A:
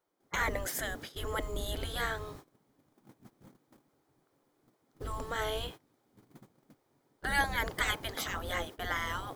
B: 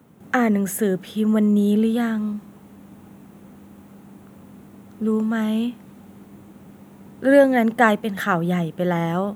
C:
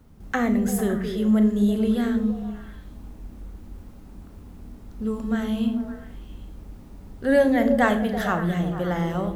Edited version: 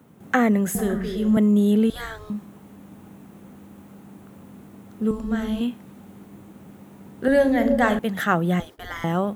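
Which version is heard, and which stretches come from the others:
B
0.75–1.37 s: from C
1.90–2.30 s: from A
5.11–5.61 s: from C
7.28–7.99 s: from C
8.60–9.04 s: from A

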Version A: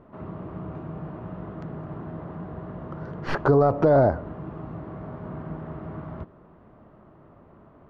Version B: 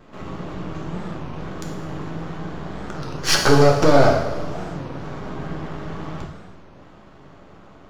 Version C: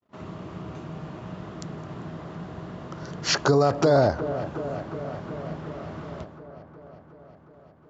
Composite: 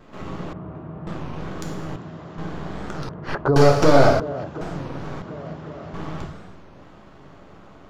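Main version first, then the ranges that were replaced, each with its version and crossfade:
B
0.53–1.07 s: from A
1.96–2.38 s: from C
3.09–3.56 s: from A
4.20–4.61 s: from C
5.22–5.94 s: from C

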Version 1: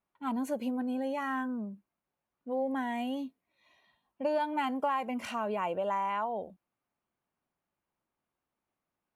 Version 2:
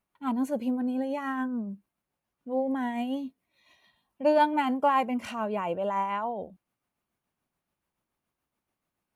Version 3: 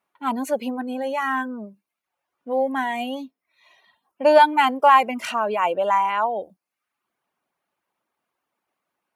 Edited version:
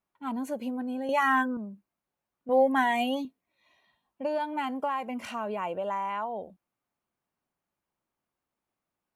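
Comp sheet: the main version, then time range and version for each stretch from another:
1
1.09–1.57 s: from 3
2.49–3.25 s: from 3
not used: 2

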